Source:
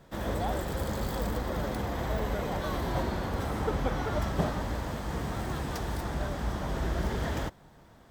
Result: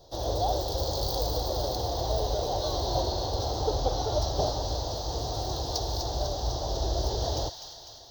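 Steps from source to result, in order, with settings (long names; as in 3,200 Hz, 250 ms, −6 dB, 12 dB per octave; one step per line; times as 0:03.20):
drawn EQ curve 120 Hz 0 dB, 190 Hz −18 dB, 340 Hz −1 dB, 750 Hz +5 dB, 1,300 Hz −13 dB, 2,200 Hz −21 dB, 4,200 Hz +13 dB, 6,200 Hz +10 dB, 9,800 Hz −30 dB, 16,000 Hz +9 dB
on a send: delay with a high-pass on its return 250 ms, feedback 63%, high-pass 1,500 Hz, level −7 dB
on the sum: level +2 dB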